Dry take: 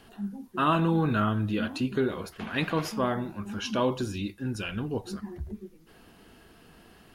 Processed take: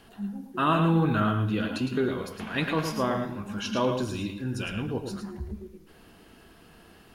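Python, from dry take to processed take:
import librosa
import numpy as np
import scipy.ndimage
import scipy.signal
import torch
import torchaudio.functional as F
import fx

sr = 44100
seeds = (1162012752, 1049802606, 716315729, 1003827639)

p1 = x + fx.echo_single(x, sr, ms=109, db=-6.5, dry=0)
y = fx.rev_plate(p1, sr, seeds[0], rt60_s=1.2, hf_ratio=0.95, predelay_ms=0, drr_db=12.5)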